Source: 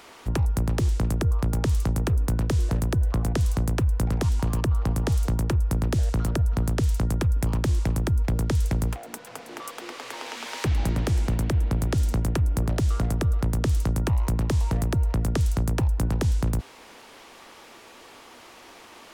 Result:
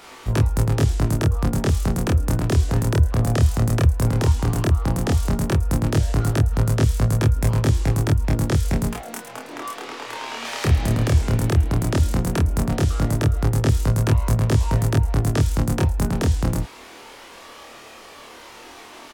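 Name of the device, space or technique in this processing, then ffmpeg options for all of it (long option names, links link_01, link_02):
double-tracked vocal: -filter_complex "[0:a]asplit=2[link_01][link_02];[link_02]adelay=27,volume=-2dB[link_03];[link_01][link_03]amix=inputs=2:normalize=0,flanger=delay=19:depth=6.4:speed=0.14,asettb=1/sr,asplit=3[link_04][link_05][link_06];[link_04]atrim=end=9.284[link_07];[link_05]atrim=start=9.28:end=10.45,asetpts=PTS-STARTPTS,afade=type=in:duration=0.004:curve=qsin,afade=type=out:start_time=1.166:duration=0.004:curve=qsin,highshelf=frequency=4700:gain=-5.5[link_08];[link_06]atrim=start=10.446[link_09];[link_07][link_08]acrossfade=duration=0.004:curve1=hsin:curve2=qsin[link_10];[link_10][link_09]acrossfade=duration=0.004:curve1=qsin:curve2=hsin,volume=6.5dB"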